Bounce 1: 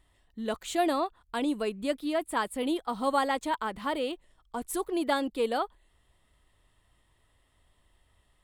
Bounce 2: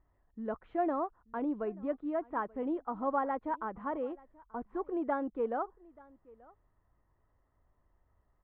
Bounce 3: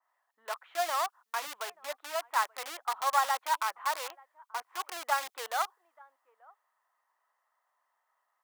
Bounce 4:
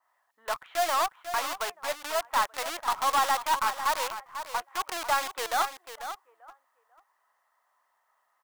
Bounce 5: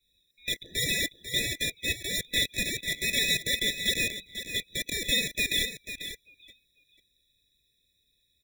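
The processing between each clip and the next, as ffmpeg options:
-af "lowpass=f=1.5k:w=0.5412,lowpass=f=1.5k:w=1.3066,aecho=1:1:883:0.0631,volume=-4.5dB"
-filter_complex "[0:a]asplit=2[a][b];[b]acrusher=bits=3:dc=4:mix=0:aa=0.000001,volume=-7dB[c];[a][c]amix=inputs=2:normalize=0,highpass=f=820:w=0.5412,highpass=f=820:w=1.3066,adynamicequalizer=threshold=0.00316:dfrequency=2200:dqfactor=0.7:tfrequency=2200:tqfactor=0.7:attack=5:release=100:ratio=0.375:range=3.5:mode=boostabove:tftype=highshelf,volume=5.5dB"
-filter_complex "[0:a]asplit=2[a][b];[b]acrusher=bits=5:dc=4:mix=0:aa=0.000001,volume=-8dB[c];[a][c]amix=inputs=2:normalize=0,asoftclip=type=tanh:threshold=-25dB,aecho=1:1:494:0.299,volume=5.5dB"
-af "afftfilt=real='real(if(lt(b,920),b+92*(1-2*mod(floor(b/92),2)),b),0)':imag='imag(if(lt(b,920),b+92*(1-2*mod(floor(b/92),2)),b),0)':win_size=2048:overlap=0.75,asuperstop=centerf=820:order=4:qfactor=1.2,afftfilt=real='re*eq(mod(floor(b*sr/1024/850),2),0)':imag='im*eq(mod(floor(b*sr/1024/850),2),0)':win_size=1024:overlap=0.75,volume=7dB"

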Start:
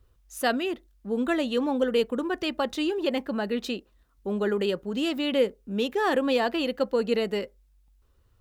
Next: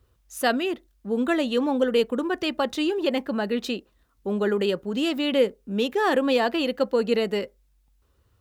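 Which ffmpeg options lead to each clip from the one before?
-af "highpass=59,volume=2.5dB"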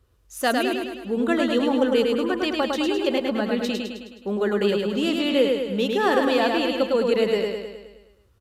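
-filter_complex "[0:a]asplit=2[a][b];[b]aecho=0:1:105|210|315|420|525|630|735|840:0.668|0.374|0.21|0.117|0.0657|0.0368|0.0206|0.0115[c];[a][c]amix=inputs=2:normalize=0,aresample=32000,aresample=44100"

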